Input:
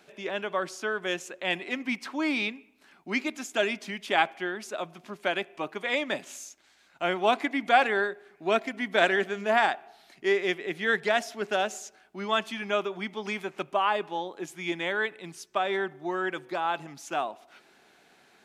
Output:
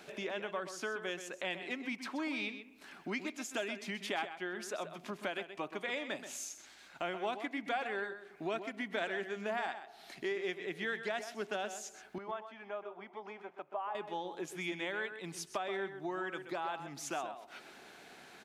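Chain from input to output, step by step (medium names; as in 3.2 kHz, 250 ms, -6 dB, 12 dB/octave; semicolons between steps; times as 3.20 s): compression 3:1, threshold -45 dBFS, peak gain reduction 21.5 dB; 12.18–13.95 s: band-pass filter 770 Hz, Q 1.4; echo from a far wall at 22 m, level -10 dB; trim +4.5 dB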